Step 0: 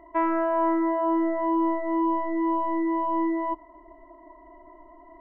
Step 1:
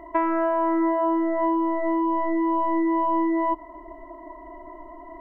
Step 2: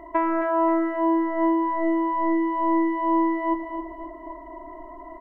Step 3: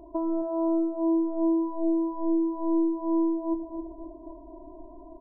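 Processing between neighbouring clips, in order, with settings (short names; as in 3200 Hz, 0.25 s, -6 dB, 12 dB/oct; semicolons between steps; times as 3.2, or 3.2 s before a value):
compressor, threshold -28 dBFS, peak gain reduction 8.5 dB; gain +8 dB
feedback echo 0.266 s, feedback 46%, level -7 dB
Gaussian blur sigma 13 samples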